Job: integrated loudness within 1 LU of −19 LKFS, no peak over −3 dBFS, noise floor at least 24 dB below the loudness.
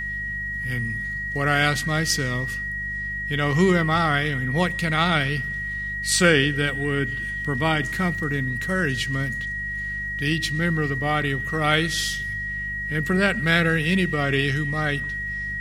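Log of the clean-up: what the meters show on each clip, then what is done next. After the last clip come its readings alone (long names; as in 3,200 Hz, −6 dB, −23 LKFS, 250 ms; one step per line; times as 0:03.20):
mains hum 50 Hz; hum harmonics up to 200 Hz; level of the hum −35 dBFS; interfering tone 1,900 Hz; level of the tone −27 dBFS; integrated loudness −23.0 LKFS; sample peak −3.0 dBFS; target loudness −19.0 LKFS
→ hum removal 50 Hz, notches 4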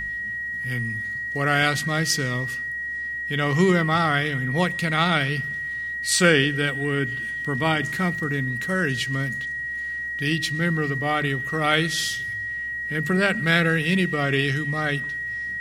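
mains hum none found; interfering tone 1,900 Hz; level of the tone −27 dBFS
→ notch filter 1,900 Hz, Q 30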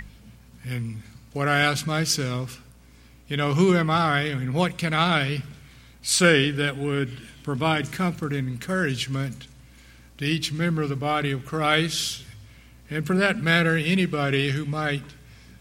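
interfering tone none found; integrated loudness −24.0 LKFS; sample peak −3.5 dBFS; target loudness −19.0 LKFS
→ level +5 dB
brickwall limiter −3 dBFS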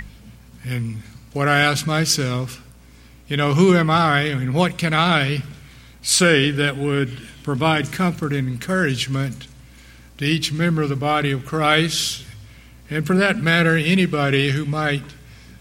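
integrated loudness −19.0 LKFS; sample peak −3.0 dBFS; background noise floor −46 dBFS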